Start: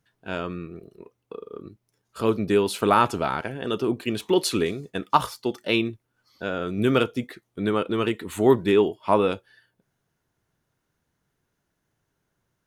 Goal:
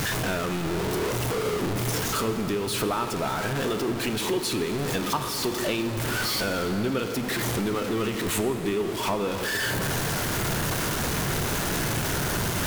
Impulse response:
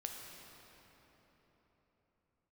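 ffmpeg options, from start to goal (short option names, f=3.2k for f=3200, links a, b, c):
-filter_complex "[0:a]aeval=exprs='val(0)+0.5*0.0944*sgn(val(0))':c=same,acompressor=threshold=-27dB:ratio=4,asplit=2[a][b];[1:a]atrim=start_sample=2205,asetrate=38808,aresample=44100[c];[b][c]afir=irnorm=-1:irlink=0,volume=1dB[d];[a][d]amix=inputs=2:normalize=0,volume=-4.5dB"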